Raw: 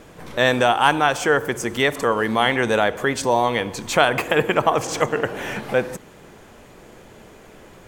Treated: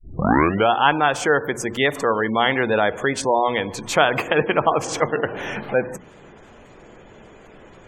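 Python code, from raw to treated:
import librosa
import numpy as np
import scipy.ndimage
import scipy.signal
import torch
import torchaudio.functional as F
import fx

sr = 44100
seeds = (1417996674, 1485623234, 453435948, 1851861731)

y = fx.tape_start_head(x, sr, length_s=0.7)
y = fx.hum_notches(y, sr, base_hz=60, count=4)
y = fx.spec_gate(y, sr, threshold_db=-25, keep='strong')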